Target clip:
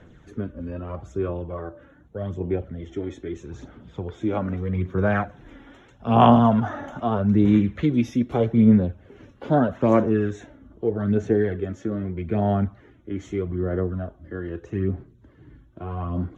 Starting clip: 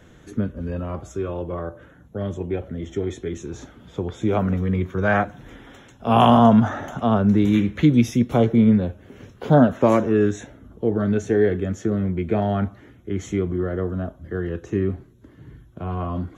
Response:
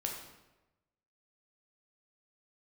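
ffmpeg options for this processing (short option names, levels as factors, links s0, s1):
-af "aphaser=in_gain=1:out_gain=1:delay=3.6:decay=0.45:speed=0.8:type=sinusoidal,aemphasis=mode=reproduction:type=50fm,volume=0.596"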